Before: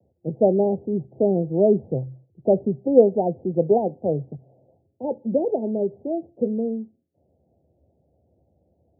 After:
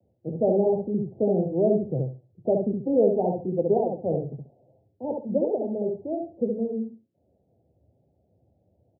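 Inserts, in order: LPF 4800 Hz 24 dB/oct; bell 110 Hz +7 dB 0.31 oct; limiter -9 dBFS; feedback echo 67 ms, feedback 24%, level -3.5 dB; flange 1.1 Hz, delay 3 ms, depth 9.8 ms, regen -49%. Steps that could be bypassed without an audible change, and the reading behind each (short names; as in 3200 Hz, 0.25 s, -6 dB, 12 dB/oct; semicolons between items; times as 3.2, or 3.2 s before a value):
LPF 4800 Hz: input band ends at 910 Hz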